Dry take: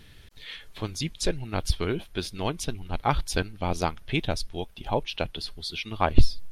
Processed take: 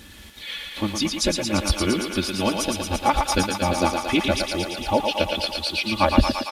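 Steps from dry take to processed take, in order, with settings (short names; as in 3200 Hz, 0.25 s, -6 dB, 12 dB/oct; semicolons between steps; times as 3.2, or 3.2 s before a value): bin magnitudes rounded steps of 15 dB; HPF 51 Hz 12 dB/oct; comb 3.5 ms, depth 97%; in parallel at -2 dB: compressor, threshold -29 dBFS, peak gain reduction 15.5 dB; on the sum: bit-crush 8-bit; small resonant body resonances 200/420/2500 Hz, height 6 dB; on a send: thinning echo 0.114 s, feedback 78%, high-pass 360 Hz, level -4 dB; on the sum: downsampling 32000 Hz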